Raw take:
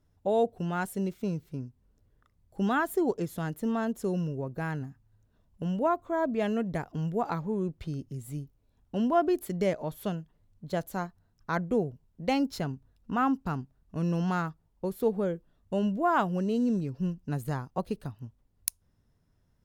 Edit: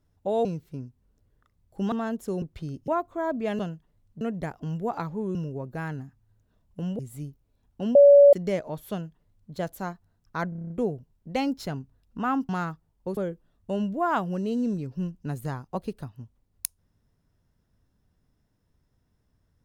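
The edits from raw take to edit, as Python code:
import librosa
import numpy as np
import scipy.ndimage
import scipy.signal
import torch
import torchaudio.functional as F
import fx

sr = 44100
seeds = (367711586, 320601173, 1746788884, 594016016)

y = fx.edit(x, sr, fx.cut(start_s=0.45, length_s=0.8),
    fx.cut(start_s=2.72, length_s=0.96),
    fx.swap(start_s=4.18, length_s=1.64, other_s=7.67, other_length_s=0.46),
    fx.bleep(start_s=9.09, length_s=0.38, hz=569.0, db=-9.5),
    fx.duplicate(start_s=10.05, length_s=0.62, to_s=6.53),
    fx.stutter(start_s=11.63, slice_s=0.03, count=8),
    fx.cut(start_s=13.42, length_s=0.84),
    fx.cut(start_s=14.94, length_s=0.26), tone=tone)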